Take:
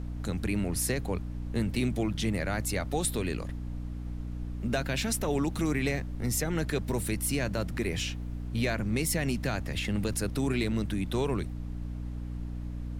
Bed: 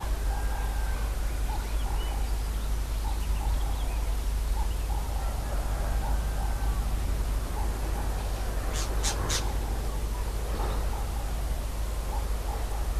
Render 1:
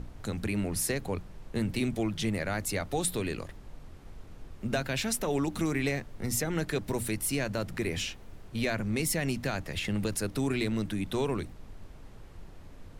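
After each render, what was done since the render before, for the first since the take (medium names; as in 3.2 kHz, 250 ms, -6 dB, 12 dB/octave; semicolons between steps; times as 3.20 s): hum notches 60/120/180/240/300 Hz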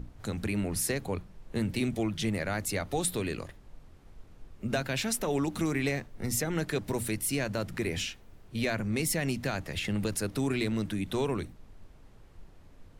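noise print and reduce 6 dB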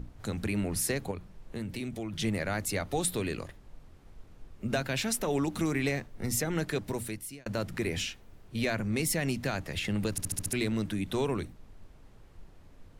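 1.11–2.13 s: compression 2:1, threshold -38 dBFS; 6.50–7.46 s: fade out equal-power; 10.11 s: stutter in place 0.07 s, 6 plays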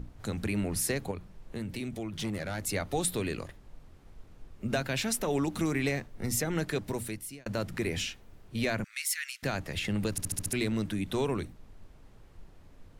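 2.10–2.64 s: valve stage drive 28 dB, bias 0.4; 8.84–9.43 s: steep high-pass 1.4 kHz 48 dB/octave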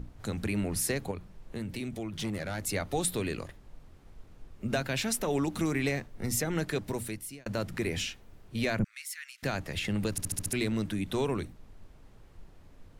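8.79–9.38 s: tilt shelf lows +9 dB, about 640 Hz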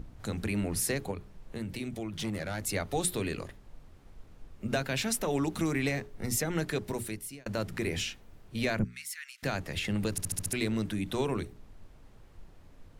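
hum notches 60/120/180/240/300/360/420 Hz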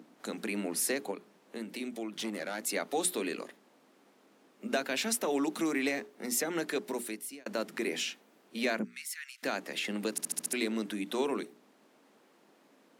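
steep high-pass 220 Hz 36 dB/octave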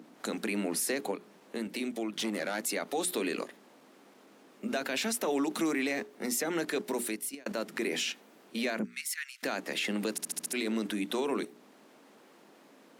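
in parallel at +1.5 dB: level held to a coarse grid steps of 22 dB; on the sum: peak limiter -22 dBFS, peak gain reduction 6.5 dB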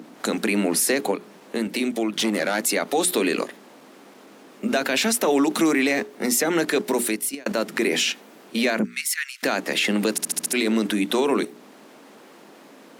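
trim +10.5 dB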